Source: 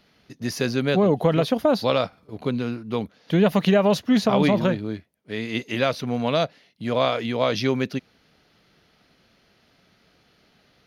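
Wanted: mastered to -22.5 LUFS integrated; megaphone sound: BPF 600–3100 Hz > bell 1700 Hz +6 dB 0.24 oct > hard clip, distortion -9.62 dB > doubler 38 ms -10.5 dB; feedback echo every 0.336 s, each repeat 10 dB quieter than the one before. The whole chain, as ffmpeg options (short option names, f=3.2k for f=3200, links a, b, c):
-filter_complex "[0:a]highpass=600,lowpass=3.1k,equalizer=f=1.7k:t=o:w=0.24:g=6,aecho=1:1:336|672|1008|1344:0.316|0.101|0.0324|0.0104,asoftclip=type=hard:threshold=-22.5dB,asplit=2[a][b];[b]adelay=38,volume=-10.5dB[c];[a][c]amix=inputs=2:normalize=0,volume=7.5dB"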